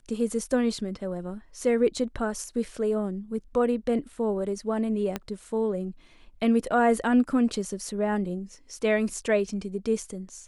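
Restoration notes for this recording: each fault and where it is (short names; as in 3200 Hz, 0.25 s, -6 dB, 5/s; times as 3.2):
5.16 pop -14 dBFS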